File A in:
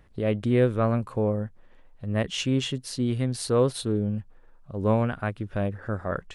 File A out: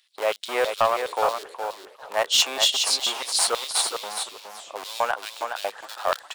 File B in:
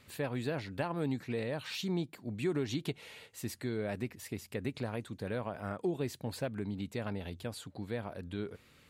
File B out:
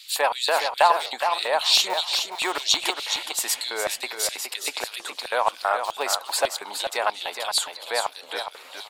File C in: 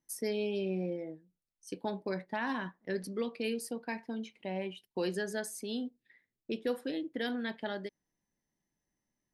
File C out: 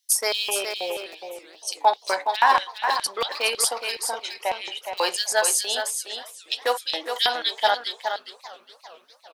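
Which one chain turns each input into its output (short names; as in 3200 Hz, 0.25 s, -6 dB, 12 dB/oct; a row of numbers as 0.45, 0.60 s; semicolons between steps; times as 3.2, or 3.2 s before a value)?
dynamic EQ 7600 Hz, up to +6 dB, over -55 dBFS, Q 1; in parallel at -9 dB: Schmitt trigger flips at -27.5 dBFS; on the sum: HPF 450 Hz 12 dB/oct; notch 6100 Hz, Q 23; LFO high-pass square 3.1 Hz 840–3800 Hz; bell 1800 Hz -2.5 dB; on a send: echo 0.417 s -7 dB; on the sum: soft clip -17.5 dBFS; warbling echo 0.406 s, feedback 62%, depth 207 cents, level -19 dB; match loudness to -24 LUFS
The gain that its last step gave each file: +7.5, +17.5, +16.5 dB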